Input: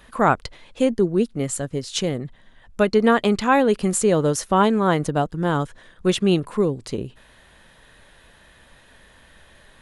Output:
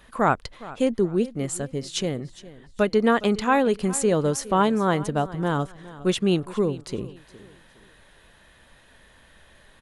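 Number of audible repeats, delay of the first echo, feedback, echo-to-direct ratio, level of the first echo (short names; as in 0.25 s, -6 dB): 2, 0.413 s, 32%, -17.5 dB, -18.0 dB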